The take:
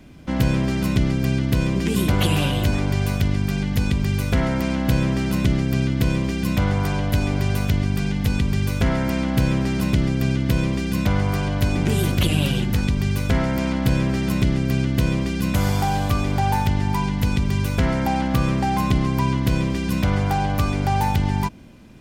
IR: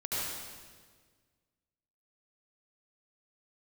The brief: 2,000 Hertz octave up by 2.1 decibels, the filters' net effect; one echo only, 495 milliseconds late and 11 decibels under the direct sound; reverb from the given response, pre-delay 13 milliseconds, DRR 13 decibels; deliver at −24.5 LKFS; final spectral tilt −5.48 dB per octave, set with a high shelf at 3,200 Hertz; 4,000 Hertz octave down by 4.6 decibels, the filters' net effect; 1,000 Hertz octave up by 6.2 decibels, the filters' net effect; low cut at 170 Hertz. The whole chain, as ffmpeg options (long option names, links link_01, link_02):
-filter_complex "[0:a]highpass=170,equalizer=frequency=1000:width_type=o:gain=8,equalizer=frequency=2000:width_type=o:gain=3.5,highshelf=frequency=3200:gain=-7.5,equalizer=frequency=4000:width_type=o:gain=-3,aecho=1:1:495:0.282,asplit=2[link_01][link_02];[1:a]atrim=start_sample=2205,adelay=13[link_03];[link_02][link_03]afir=irnorm=-1:irlink=0,volume=-19dB[link_04];[link_01][link_04]amix=inputs=2:normalize=0,volume=-2dB"